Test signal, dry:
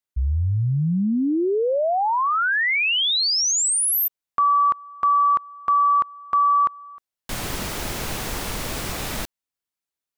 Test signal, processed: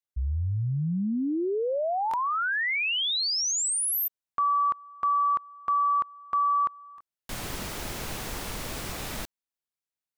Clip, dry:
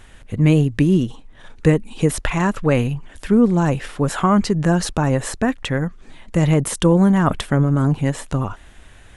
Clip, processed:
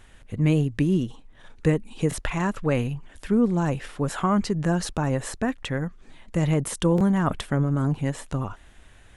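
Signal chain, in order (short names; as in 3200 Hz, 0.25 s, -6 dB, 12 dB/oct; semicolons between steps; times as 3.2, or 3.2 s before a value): stuck buffer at 2.09/6.96, samples 1024, times 1; gain -6.5 dB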